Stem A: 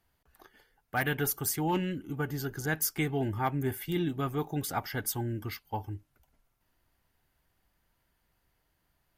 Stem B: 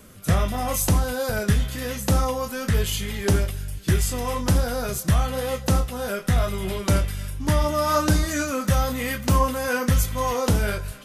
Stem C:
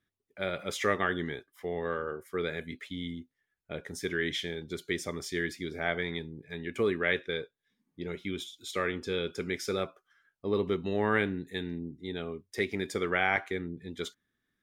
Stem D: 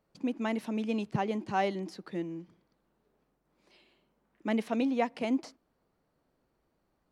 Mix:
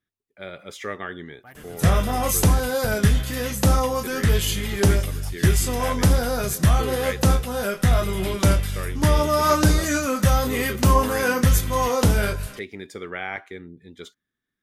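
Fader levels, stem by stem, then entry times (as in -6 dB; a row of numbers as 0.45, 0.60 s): -17.0 dB, +2.5 dB, -3.5 dB, off; 0.50 s, 1.55 s, 0.00 s, off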